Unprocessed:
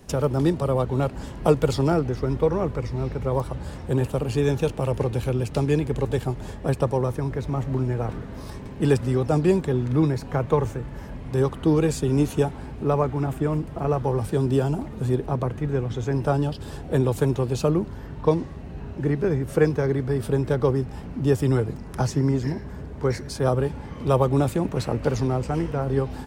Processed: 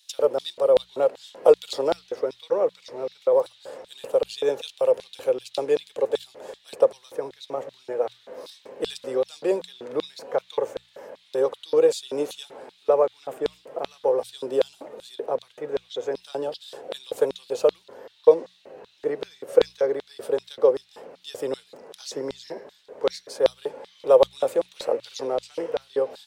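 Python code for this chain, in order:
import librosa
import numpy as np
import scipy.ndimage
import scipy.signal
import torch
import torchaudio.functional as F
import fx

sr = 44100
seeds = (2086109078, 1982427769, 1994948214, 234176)

y = fx.filter_lfo_highpass(x, sr, shape='square', hz=2.6, low_hz=510.0, high_hz=3700.0, q=5.7)
y = fx.hum_notches(y, sr, base_hz=60, count=3)
y = y * librosa.db_to_amplitude(-4.5)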